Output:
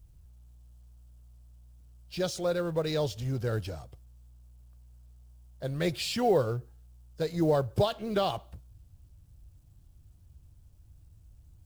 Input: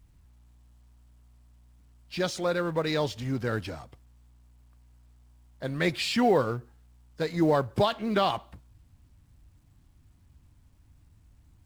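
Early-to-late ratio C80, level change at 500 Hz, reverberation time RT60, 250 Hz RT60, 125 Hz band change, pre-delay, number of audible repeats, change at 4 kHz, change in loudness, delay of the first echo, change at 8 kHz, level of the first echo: none, -1.0 dB, none, none, +0.5 dB, none, none, -3.0 dB, -2.5 dB, none, 0.0 dB, none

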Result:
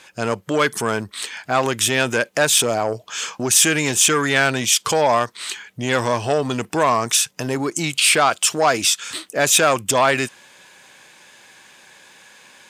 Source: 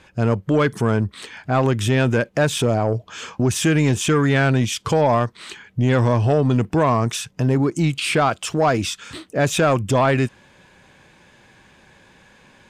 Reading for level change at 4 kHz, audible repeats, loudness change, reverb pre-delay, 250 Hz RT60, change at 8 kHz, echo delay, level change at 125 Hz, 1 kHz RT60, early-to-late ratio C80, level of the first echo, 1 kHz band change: +8.0 dB, none, +1.5 dB, none, none, +12.5 dB, none, -11.0 dB, none, none, none, +2.5 dB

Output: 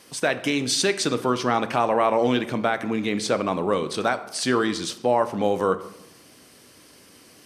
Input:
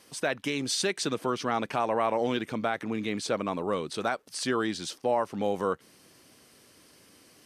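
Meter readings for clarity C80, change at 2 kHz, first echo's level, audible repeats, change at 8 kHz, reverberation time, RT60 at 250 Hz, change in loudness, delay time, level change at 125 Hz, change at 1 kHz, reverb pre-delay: 16.5 dB, +6.5 dB, none, none, +6.0 dB, 0.90 s, 1.1 s, +6.5 dB, none, +6.5 dB, +6.5 dB, 16 ms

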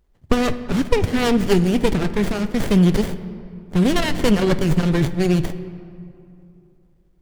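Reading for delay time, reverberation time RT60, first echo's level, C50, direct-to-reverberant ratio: none, 2.7 s, none, 12.5 dB, 11.5 dB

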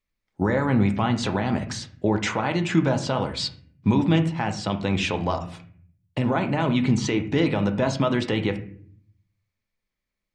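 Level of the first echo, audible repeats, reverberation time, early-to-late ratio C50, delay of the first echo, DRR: none, none, 0.55 s, 12.0 dB, none, 6.0 dB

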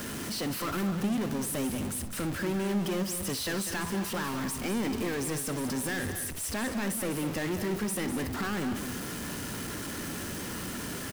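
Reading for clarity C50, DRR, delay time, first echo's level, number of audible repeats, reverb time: none, none, 60 ms, -15.0 dB, 3, none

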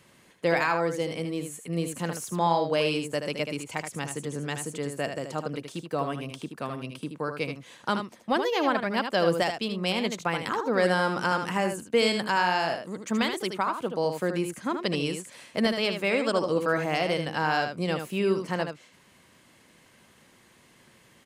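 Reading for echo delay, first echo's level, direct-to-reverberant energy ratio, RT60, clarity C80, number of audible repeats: 77 ms, -7.0 dB, none, none, none, 1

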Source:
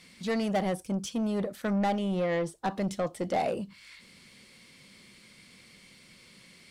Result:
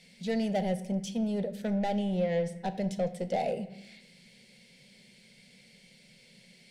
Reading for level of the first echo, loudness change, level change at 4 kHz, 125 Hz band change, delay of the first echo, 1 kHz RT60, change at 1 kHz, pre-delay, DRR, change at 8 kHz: none, -1.0 dB, -2.5 dB, 0.0 dB, none, 0.95 s, -3.5 dB, 4 ms, 11.0 dB, -4.0 dB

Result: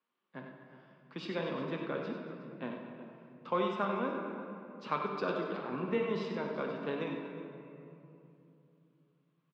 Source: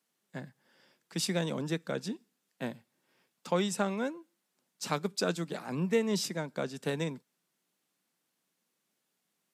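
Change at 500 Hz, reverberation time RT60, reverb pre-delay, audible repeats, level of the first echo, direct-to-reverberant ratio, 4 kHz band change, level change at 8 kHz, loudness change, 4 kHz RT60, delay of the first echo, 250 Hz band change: -1.5 dB, 2.9 s, 8 ms, 4, -12.0 dB, 0.0 dB, -9.5 dB, under -25 dB, -3.5 dB, 1.5 s, 60 ms, -3.5 dB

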